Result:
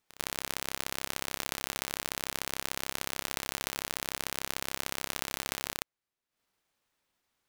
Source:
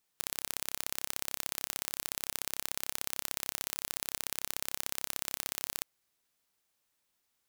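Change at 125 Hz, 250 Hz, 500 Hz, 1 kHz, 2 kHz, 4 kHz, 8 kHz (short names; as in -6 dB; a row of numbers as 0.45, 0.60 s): +8.0, +8.0, +8.0, +7.5, +6.5, +4.0, 0.0 dB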